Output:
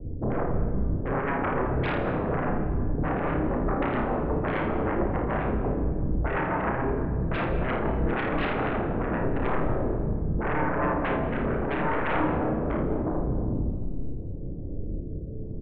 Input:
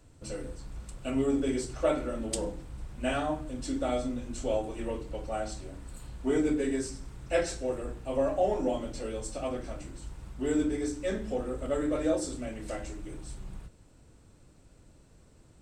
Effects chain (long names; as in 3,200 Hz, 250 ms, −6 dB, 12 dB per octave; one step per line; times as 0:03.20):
inverse Chebyshev low-pass filter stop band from 2,200 Hz, stop band 70 dB
in parallel at −1 dB: brickwall limiter −30 dBFS, peak gain reduction 11 dB
on the sum: downward compressor 3 to 1, threshold −33 dBFS, peak gain reduction 9 dB
sine wavefolder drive 19 dB, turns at −19 dBFS
rotating-speaker cabinet horn 6.7 Hz, later 0.8 Hz, at 0:08.67
double-tracking delay 32 ms −6 dB
ambience of single reflections 55 ms −7 dB, 80 ms −10 dB
on a send at −8.5 dB: convolution reverb RT60 1.9 s, pre-delay 95 ms
on the sum: level −5 dB